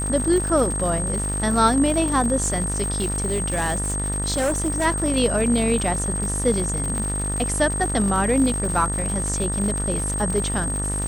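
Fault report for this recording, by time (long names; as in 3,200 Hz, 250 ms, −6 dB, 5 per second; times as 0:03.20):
mains buzz 50 Hz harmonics 39 −27 dBFS
surface crackle 150 per second −26 dBFS
whistle 8,400 Hz −26 dBFS
0:02.96–0:04.86: clipping −18 dBFS
0:06.98: click −16 dBFS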